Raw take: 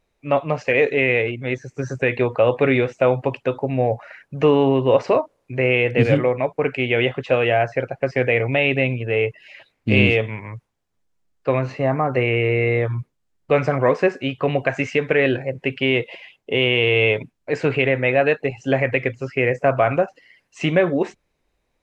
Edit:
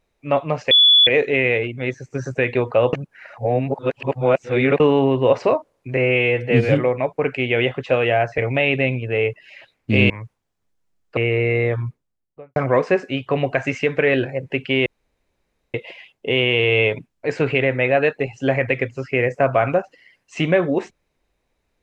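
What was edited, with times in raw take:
0.71 s: add tone 3.43 kHz -8.5 dBFS 0.36 s
2.57–4.44 s: reverse
5.61–6.09 s: stretch 1.5×
7.78–8.36 s: delete
10.08–10.42 s: delete
11.49–12.29 s: delete
12.86–13.68 s: studio fade out
15.98 s: insert room tone 0.88 s

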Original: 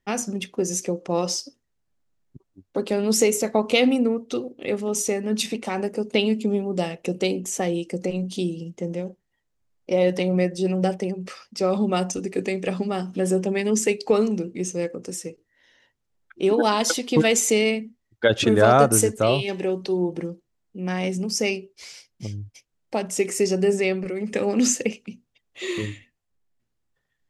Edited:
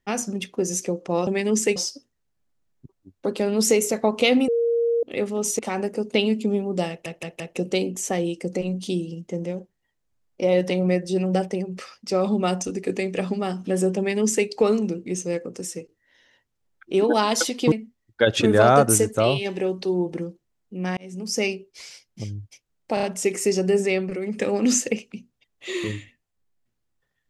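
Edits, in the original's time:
3.99–4.54 s: bleep 467 Hz -18 dBFS
5.10–5.59 s: delete
6.89 s: stutter 0.17 s, 4 plays
13.47–13.96 s: copy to 1.27 s
17.21–17.75 s: delete
21.00–21.44 s: fade in
22.97 s: stutter 0.03 s, 4 plays

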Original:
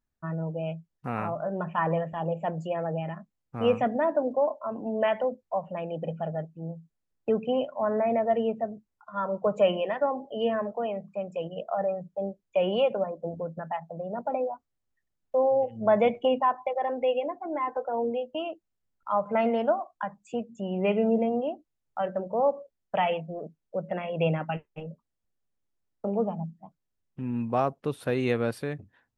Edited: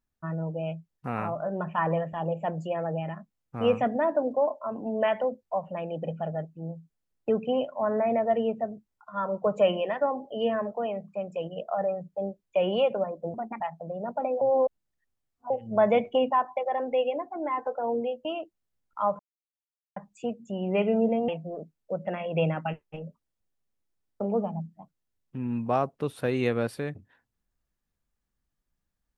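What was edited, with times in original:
13.34–13.70 s: speed 137%
14.51–15.60 s: reverse
19.29–20.06 s: mute
21.38–23.12 s: delete

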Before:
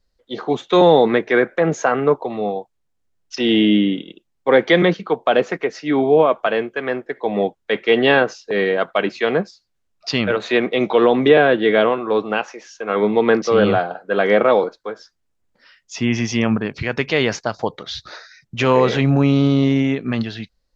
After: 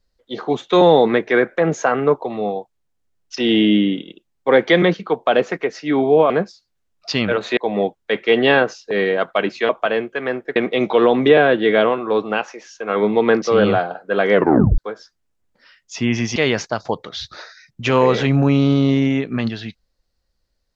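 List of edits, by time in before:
6.30–7.17 s: swap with 9.29–10.56 s
14.33 s: tape stop 0.45 s
16.36–17.10 s: delete

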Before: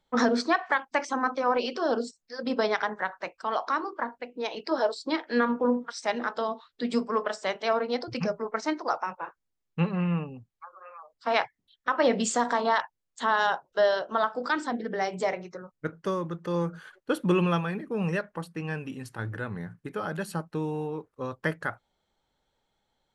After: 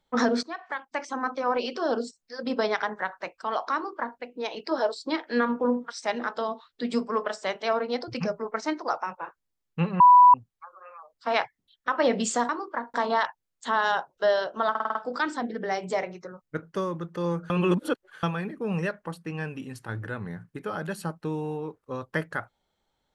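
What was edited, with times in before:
0.43–1.99 s: fade in equal-power, from -16 dB
3.74–4.19 s: copy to 12.49 s
10.00–10.34 s: bleep 988 Hz -10 dBFS
14.25 s: stutter 0.05 s, 6 plays
16.80–17.53 s: reverse

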